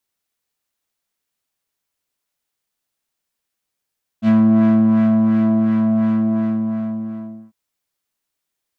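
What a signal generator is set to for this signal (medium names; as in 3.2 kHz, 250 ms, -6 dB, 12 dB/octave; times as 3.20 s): synth patch with filter wobble A3, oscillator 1 triangle, interval +7 st, oscillator 2 level -16 dB, sub -18 dB, noise -23 dB, filter lowpass, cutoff 880 Hz, Q 1, filter envelope 2 oct, filter decay 0.10 s, filter sustain 25%, attack 60 ms, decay 1.39 s, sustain -4 dB, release 1.48 s, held 1.82 s, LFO 2.8 Hz, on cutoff 0.5 oct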